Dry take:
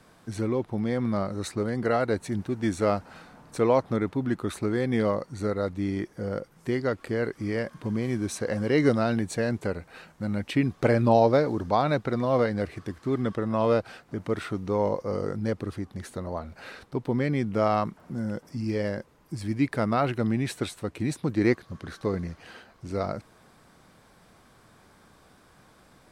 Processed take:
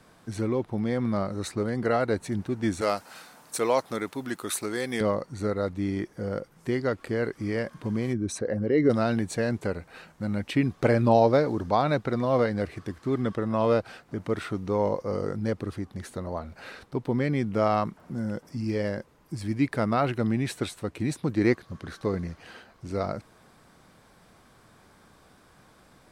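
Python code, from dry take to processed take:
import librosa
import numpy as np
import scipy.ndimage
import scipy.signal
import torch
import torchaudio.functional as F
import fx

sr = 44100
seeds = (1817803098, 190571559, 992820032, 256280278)

y = fx.riaa(x, sr, side='recording', at=(2.81, 5.01))
y = fx.envelope_sharpen(y, sr, power=1.5, at=(8.12, 8.89), fade=0.02)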